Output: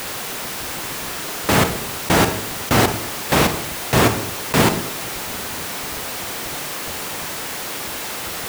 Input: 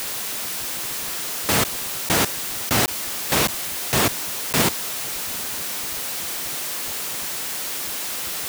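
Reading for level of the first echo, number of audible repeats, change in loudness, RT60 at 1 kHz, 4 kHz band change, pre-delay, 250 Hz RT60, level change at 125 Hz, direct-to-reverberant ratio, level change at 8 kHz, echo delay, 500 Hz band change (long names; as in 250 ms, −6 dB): no echo audible, no echo audible, +1.5 dB, 0.65 s, +1.0 dB, 29 ms, 0.95 s, +8.0 dB, 8.0 dB, −1.5 dB, no echo audible, +7.0 dB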